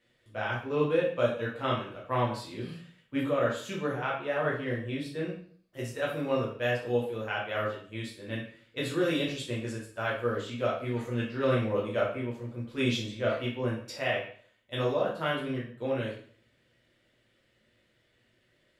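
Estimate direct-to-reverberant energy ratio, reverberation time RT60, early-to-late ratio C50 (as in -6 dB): -5.0 dB, 0.50 s, 5.0 dB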